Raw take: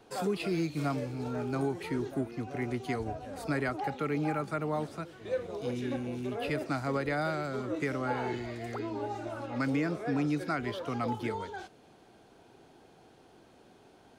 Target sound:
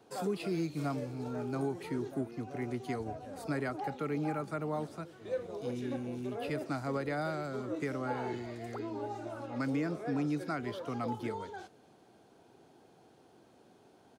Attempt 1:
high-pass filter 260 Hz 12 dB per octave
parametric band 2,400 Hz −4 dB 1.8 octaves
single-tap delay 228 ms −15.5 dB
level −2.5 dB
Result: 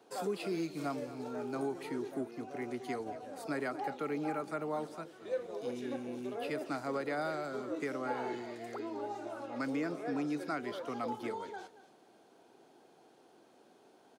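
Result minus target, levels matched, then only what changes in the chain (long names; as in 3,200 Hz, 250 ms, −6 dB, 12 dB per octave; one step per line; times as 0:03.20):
125 Hz band −8.5 dB; echo-to-direct +12 dB
change: high-pass filter 91 Hz 12 dB per octave
change: single-tap delay 228 ms −27.5 dB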